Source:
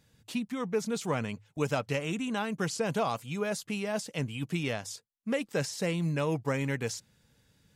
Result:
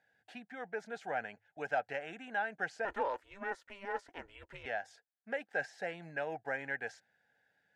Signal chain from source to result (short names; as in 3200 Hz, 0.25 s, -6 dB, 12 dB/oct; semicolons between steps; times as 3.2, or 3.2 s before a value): double band-pass 1100 Hz, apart 1.1 oct; 2.85–4.66 ring modulator 200 Hz; gain +5.5 dB